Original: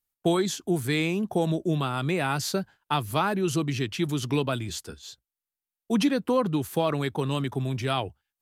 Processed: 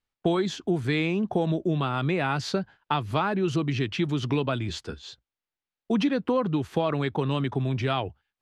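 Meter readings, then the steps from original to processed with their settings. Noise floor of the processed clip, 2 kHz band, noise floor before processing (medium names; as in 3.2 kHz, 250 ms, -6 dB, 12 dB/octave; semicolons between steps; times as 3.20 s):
under -85 dBFS, 0.0 dB, under -85 dBFS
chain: low-pass 3.7 kHz 12 dB/octave; compression 2:1, threshold -30 dBFS, peak gain reduction 7 dB; trim +5 dB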